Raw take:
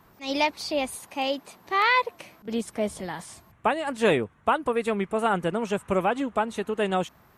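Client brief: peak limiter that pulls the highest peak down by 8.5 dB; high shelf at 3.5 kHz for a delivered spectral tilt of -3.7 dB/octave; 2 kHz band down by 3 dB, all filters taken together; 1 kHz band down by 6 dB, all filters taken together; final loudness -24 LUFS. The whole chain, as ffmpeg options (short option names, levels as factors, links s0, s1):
-af "equalizer=f=1000:t=o:g=-7.5,equalizer=f=2000:t=o:g=-3.5,highshelf=f=3500:g=6.5,volume=2.24,alimiter=limit=0.237:level=0:latency=1"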